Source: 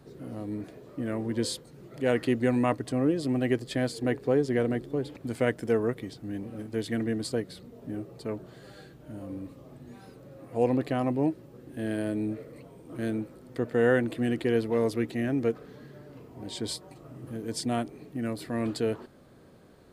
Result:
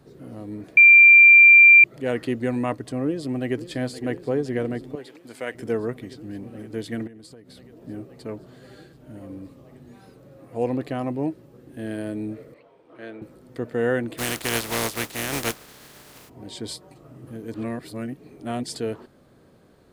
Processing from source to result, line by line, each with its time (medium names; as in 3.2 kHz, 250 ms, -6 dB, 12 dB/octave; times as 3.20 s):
0.77–1.84 s: bleep 2.37 kHz -7 dBFS
3.05–3.63 s: echo throw 520 ms, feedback 85%, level -13.5 dB
4.95–5.55 s: high-pass 840 Hz 6 dB/octave
7.07–7.84 s: compression 8:1, threshold -42 dBFS
12.54–13.22 s: three-band isolator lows -18 dB, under 410 Hz, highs -22 dB, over 4.2 kHz
14.17–16.28 s: spectral contrast reduction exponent 0.33
17.54–18.75 s: reverse